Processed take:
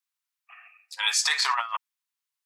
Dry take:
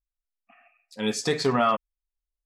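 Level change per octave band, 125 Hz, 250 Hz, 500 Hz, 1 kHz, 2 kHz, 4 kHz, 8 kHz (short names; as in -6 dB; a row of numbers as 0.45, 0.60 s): under -40 dB, under -40 dB, -25.5 dB, -2.5 dB, +6.5 dB, +7.5 dB, +8.0 dB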